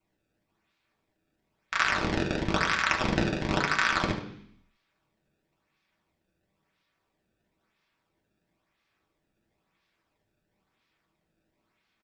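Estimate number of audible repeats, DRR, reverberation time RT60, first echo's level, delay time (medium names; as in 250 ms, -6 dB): 1, -0.5 dB, 0.65 s, -11.5 dB, 74 ms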